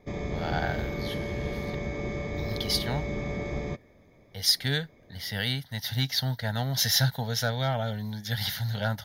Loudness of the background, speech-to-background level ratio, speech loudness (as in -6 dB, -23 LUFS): -33.5 LUFS, 5.0 dB, -28.5 LUFS